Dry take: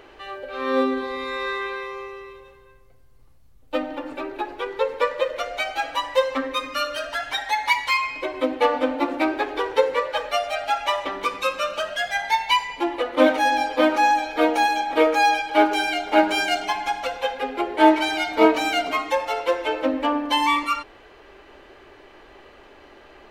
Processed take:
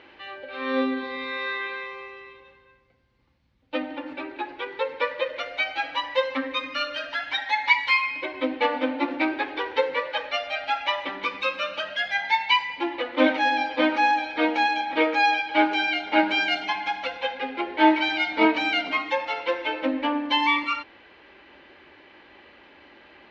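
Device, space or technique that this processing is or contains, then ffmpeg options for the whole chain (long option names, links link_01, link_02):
guitar cabinet: -af "highpass=100,equalizer=frequency=120:width_type=q:width=4:gain=-8,equalizer=frequency=420:width_type=q:width=4:gain=-10,equalizer=frequency=680:width_type=q:width=4:gain=-8,equalizer=frequency=1200:width_type=q:width=4:gain=-6,equalizer=frequency=2200:width_type=q:width=4:gain=3,lowpass=frequency=4400:width=0.5412,lowpass=frequency=4400:width=1.3066"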